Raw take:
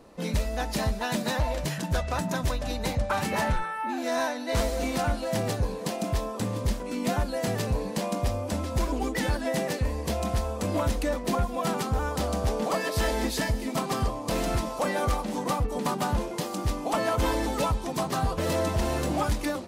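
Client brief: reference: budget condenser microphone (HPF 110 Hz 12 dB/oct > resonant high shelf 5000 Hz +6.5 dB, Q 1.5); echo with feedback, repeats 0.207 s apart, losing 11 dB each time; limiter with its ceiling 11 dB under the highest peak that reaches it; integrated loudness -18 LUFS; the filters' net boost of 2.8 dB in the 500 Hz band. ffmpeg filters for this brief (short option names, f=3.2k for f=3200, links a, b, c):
-af "equalizer=f=500:t=o:g=3.5,alimiter=level_in=2.5dB:limit=-24dB:level=0:latency=1,volume=-2.5dB,highpass=110,highshelf=f=5k:t=q:w=1.5:g=6.5,aecho=1:1:207|414|621:0.282|0.0789|0.0221,volume=16dB"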